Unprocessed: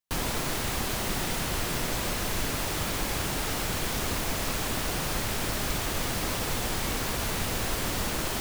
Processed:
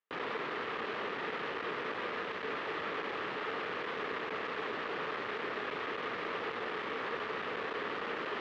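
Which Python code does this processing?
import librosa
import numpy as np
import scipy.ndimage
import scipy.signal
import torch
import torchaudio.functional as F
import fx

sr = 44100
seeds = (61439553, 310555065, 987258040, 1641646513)

y = np.clip(10.0 ** (34.5 / 20.0) * x, -1.0, 1.0) / 10.0 ** (34.5 / 20.0)
y = fx.cabinet(y, sr, low_hz=300.0, low_slope=12, high_hz=3100.0, hz=(440.0, 700.0, 1200.0, 1800.0), db=(10, -3, 7, 5))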